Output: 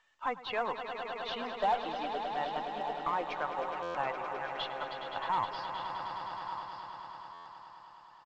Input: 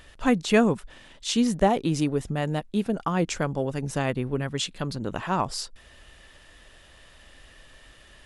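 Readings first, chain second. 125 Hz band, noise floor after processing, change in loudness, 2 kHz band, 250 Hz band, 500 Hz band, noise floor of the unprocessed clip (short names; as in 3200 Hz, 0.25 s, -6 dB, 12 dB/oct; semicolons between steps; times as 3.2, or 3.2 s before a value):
-25.0 dB, -55 dBFS, -10.0 dB, -6.0 dB, -22.5 dB, -10.0 dB, -53 dBFS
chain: per-bin expansion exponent 1.5; resonant high-pass 890 Hz, resonance Q 3.5; limiter -19 dBFS, peak gain reduction 11 dB; echo 1.172 s -12 dB; tube stage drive 19 dB, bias 0.35; steep low-pass 4200 Hz 36 dB/oct; high shelf 2100 Hz -7.5 dB; swelling echo 0.104 s, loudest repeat 5, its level -10.5 dB; stuck buffer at 3.82/7.33, samples 512, times 10; µ-law 128 kbps 16000 Hz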